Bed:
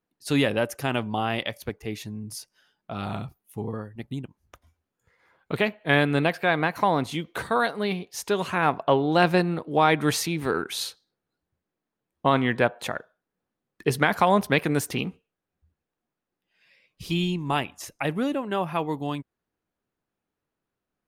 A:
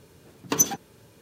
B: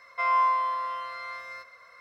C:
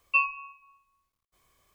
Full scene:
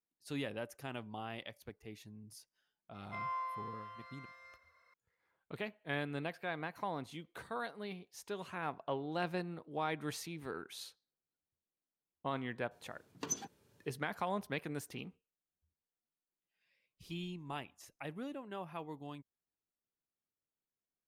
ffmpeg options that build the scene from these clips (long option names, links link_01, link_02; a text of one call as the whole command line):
ffmpeg -i bed.wav -i cue0.wav -i cue1.wav -filter_complex "[0:a]volume=-17.5dB[link_01];[1:a]acrossover=split=9300[link_02][link_03];[link_03]acompressor=threshold=-54dB:ratio=4:attack=1:release=60[link_04];[link_02][link_04]amix=inputs=2:normalize=0[link_05];[2:a]atrim=end=2,asetpts=PTS-STARTPTS,volume=-16.5dB,afade=type=in:duration=0.004:curve=hsin,afade=type=out:start_time=1.996:duration=0.004:curve=hsin,adelay=2940[link_06];[link_05]atrim=end=1.21,asetpts=PTS-STARTPTS,volume=-16dB,afade=type=in:duration=0.004:curve=hsin,afade=type=out:start_time=1.206:duration=0.004:curve=hsin,adelay=12710[link_07];[link_01][link_06][link_07]amix=inputs=3:normalize=0" out.wav